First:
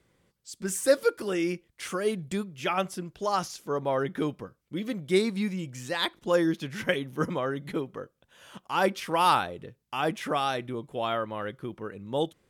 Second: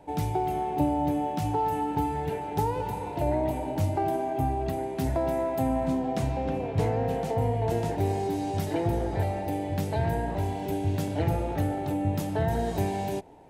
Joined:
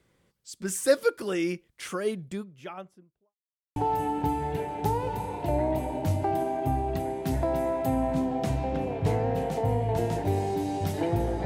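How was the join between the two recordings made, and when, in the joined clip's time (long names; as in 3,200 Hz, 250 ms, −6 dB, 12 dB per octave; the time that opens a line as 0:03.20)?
first
0:01.69–0:03.35: fade out and dull
0:03.35–0:03.76: silence
0:03.76: continue with second from 0:01.49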